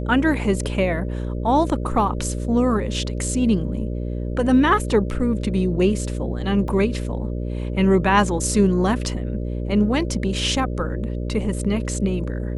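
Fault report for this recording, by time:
buzz 60 Hz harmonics 10 -26 dBFS
6.68 gap 2.7 ms

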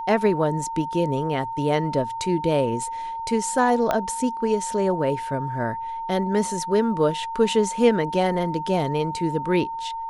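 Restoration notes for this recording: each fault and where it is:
tone 910 Hz -28 dBFS
3.91 pop -9 dBFS

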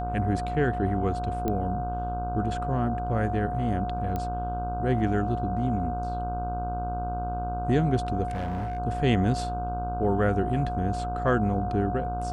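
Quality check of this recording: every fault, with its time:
buzz 60 Hz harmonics 26 -33 dBFS
tone 720 Hz -31 dBFS
1.48 pop -16 dBFS
4.16 pop -18 dBFS
8.28–8.79 clipped -27 dBFS

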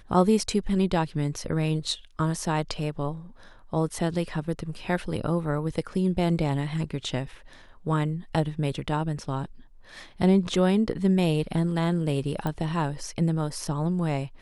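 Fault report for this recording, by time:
12.47 pop -17 dBFS

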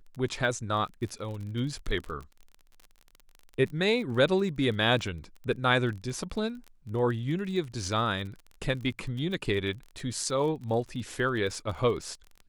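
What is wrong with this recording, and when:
crackle 31/s -37 dBFS

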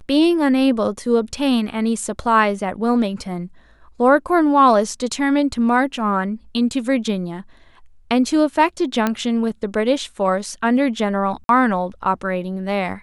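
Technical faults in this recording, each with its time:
9.07 pop -6 dBFS
11.44–11.49 gap 52 ms

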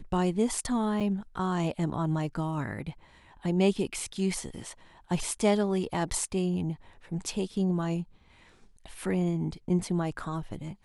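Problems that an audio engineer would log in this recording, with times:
1–1.01 gap 6 ms

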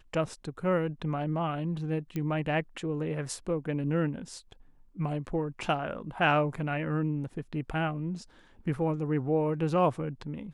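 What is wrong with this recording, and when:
2.16 pop -21 dBFS

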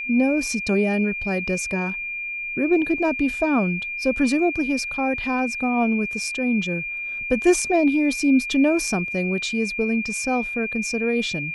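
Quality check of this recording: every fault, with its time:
tone 2400 Hz -27 dBFS

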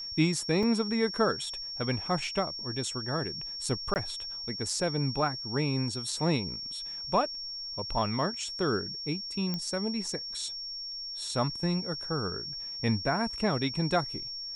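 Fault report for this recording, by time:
tone 5500 Hz -36 dBFS
0.63 gap 2.2 ms
3.94–3.96 gap 19 ms
9.54 pop -19 dBFS

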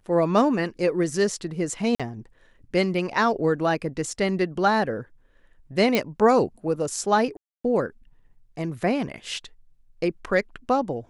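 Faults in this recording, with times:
1.95–2 gap 46 ms
5.95 pop -8 dBFS
7.37–7.64 gap 0.274 s

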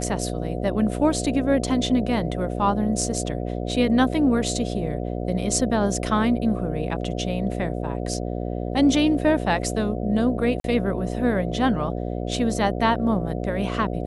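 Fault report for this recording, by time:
buzz 60 Hz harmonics 12 -28 dBFS
10.6–10.64 gap 42 ms

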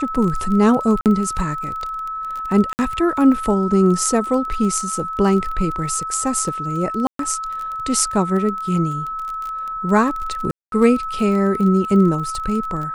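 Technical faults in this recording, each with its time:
crackle 25/s -25 dBFS
tone 1300 Hz -24 dBFS
1.01–1.06 gap 48 ms
2.73–2.79 gap 59 ms
7.07–7.19 gap 0.123 s
10.51–10.72 gap 0.212 s

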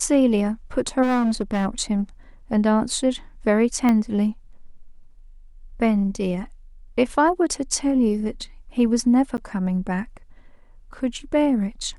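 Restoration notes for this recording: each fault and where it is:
1.02–1.67 clipped -17.5 dBFS
3.89 pop -10 dBFS
9.37–9.38 gap 9.9 ms

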